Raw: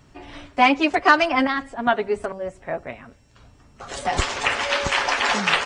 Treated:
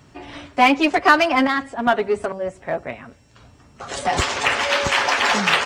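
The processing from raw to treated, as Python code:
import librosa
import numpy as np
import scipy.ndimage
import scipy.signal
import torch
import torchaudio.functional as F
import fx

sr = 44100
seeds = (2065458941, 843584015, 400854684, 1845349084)

p1 = scipy.signal.sosfilt(scipy.signal.butter(2, 66.0, 'highpass', fs=sr, output='sos'), x)
p2 = np.clip(10.0 ** (20.5 / 20.0) * p1, -1.0, 1.0) / 10.0 ** (20.5 / 20.0)
y = p1 + (p2 * librosa.db_to_amplitude(-5.5))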